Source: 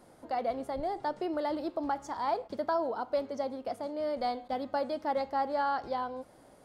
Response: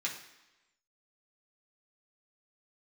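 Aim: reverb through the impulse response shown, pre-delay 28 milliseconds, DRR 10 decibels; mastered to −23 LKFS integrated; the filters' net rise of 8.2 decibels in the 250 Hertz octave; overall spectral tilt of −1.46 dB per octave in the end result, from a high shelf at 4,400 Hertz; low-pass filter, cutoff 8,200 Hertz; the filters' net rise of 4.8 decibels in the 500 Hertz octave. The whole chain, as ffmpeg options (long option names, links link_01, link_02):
-filter_complex "[0:a]lowpass=8200,equalizer=frequency=250:width_type=o:gain=8.5,equalizer=frequency=500:width_type=o:gain=4.5,highshelf=frequency=4400:gain=-8.5,asplit=2[link_01][link_02];[1:a]atrim=start_sample=2205,adelay=28[link_03];[link_02][link_03]afir=irnorm=-1:irlink=0,volume=-13.5dB[link_04];[link_01][link_04]amix=inputs=2:normalize=0,volume=6.5dB"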